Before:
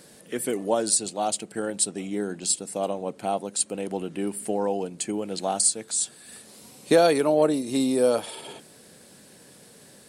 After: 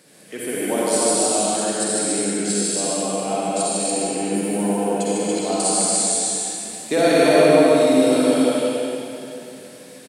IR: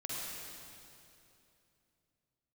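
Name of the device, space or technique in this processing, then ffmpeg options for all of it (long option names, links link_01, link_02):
stadium PA: -filter_complex "[0:a]highpass=130,equalizer=frequency=2300:width_type=o:width=0.64:gain=5,aecho=1:1:151.6|192.4|285.7:0.708|0.355|0.631[link_01];[1:a]atrim=start_sample=2205[link_02];[link_01][link_02]afir=irnorm=-1:irlink=0,volume=1.5dB"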